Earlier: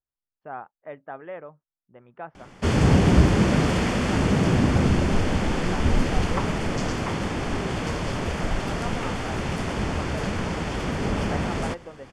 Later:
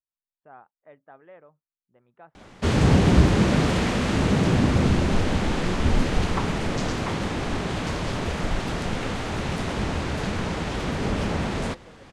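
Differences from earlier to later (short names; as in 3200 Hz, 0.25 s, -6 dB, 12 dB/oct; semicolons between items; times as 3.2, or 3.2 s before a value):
speech -11.5 dB; master: remove notch 3900 Hz, Q 6.3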